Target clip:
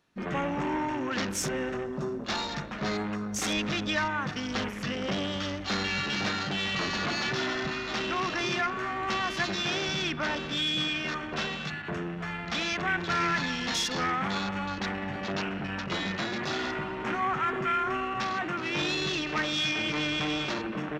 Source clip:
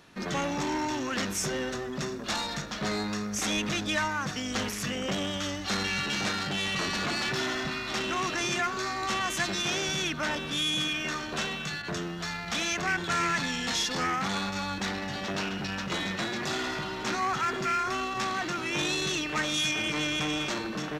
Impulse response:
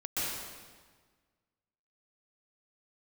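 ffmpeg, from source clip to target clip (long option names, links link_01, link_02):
-filter_complex "[0:a]afwtdn=0.0126,asplit=2[link_01][link_02];[1:a]atrim=start_sample=2205,asetrate=31311,aresample=44100,lowpass=3000[link_03];[link_02][link_03]afir=irnorm=-1:irlink=0,volume=-23.5dB[link_04];[link_01][link_04]amix=inputs=2:normalize=0"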